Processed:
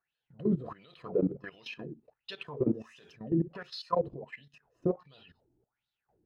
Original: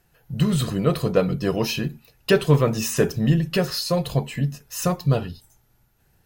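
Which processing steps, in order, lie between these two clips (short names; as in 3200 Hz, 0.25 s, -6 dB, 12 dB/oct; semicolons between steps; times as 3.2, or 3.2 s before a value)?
tilt -3 dB/oct; limiter -7.5 dBFS, peak gain reduction 8.5 dB; wah 1.4 Hz 300–3900 Hz, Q 7.2; level quantiser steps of 16 dB; gain +7 dB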